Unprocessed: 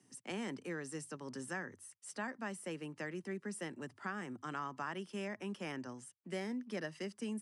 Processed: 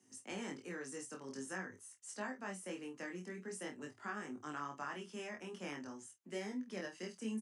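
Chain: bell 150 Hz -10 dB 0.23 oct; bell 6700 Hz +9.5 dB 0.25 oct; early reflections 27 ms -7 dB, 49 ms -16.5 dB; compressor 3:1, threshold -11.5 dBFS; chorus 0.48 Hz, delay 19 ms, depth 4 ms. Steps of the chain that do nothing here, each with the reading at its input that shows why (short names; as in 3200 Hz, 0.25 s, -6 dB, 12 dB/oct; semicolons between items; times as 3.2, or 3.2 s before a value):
compressor, threshold -11.5 dBFS: input peak -24.5 dBFS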